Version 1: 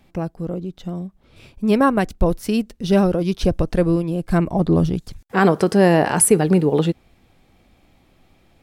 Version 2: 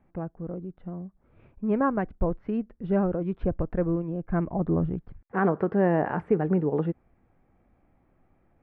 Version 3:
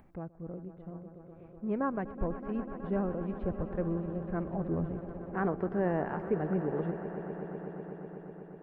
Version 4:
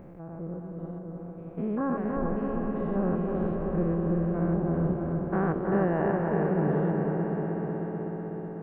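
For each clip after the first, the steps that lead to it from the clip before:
low-pass 1.8 kHz 24 dB/octave; trim -8.5 dB
echo with a slow build-up 124 ms, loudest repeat 5, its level -15 dB; upward compressor, threshold -42 dBFS; trim -7.5 dB
spectrogram pixelated in time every 200 ms; on a send: bucket-brigade echo 319 ms, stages 4096, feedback 61%, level -3.5 dB; on the sum: trim +6 dB

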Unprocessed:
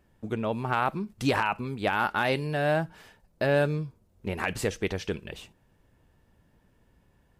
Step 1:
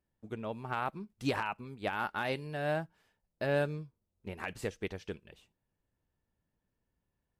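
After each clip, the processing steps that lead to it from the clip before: upward expansion 1.5:1, over -48 dBFS; trim -6 dB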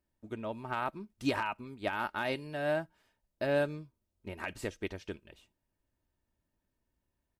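comb 3.2 ms, depth 38%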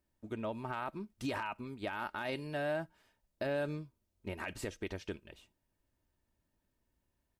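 peak limiter -29.5 dBFS, peak gain reduction 10 dB; trim +1.5 dB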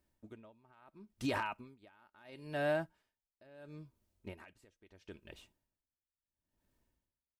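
logarithmic tremolo 0.74 Hz, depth 29 dB; trim +2.5 dB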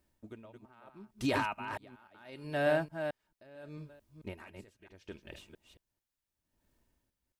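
chunks repeated in reverse 222 ms, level -7 dB; trim +4 dB

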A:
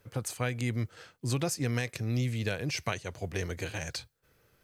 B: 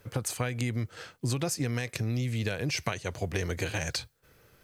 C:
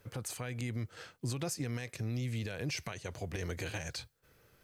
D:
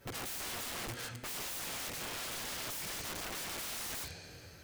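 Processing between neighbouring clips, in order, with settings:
compression, threshold -33 dBFS, peak gain reduction 8 dB; trim +6.5 dB
peak limiter -22 dBFS, peak gain reduction 8.5 dB; trim -5 dB
two-slope reverb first 0.23 s, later 2.8 s, from -22 dB, DRR -5.5 dB; integer overflow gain 36 dB

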